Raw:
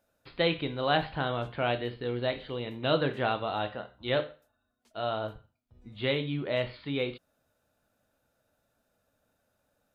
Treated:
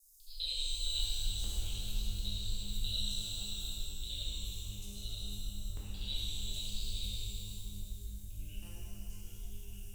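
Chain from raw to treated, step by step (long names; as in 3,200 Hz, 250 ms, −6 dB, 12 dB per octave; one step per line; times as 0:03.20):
reversed piece by piece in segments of 66 ms
delay with pitch and tempo change per echo 372 ms, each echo −5 semitones, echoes 3, each echo −6 dB
inverse Chebyshev band-stop filter 110–2,100 Hz, stop band 60 dB
buffer that repeats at 0:01.39/0:05.72/0:08.62, samples 256, times 8
reverb with rising layers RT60 2.7 s, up +12 semitones, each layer −8 dB, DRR −7 dB
level +17.5 dB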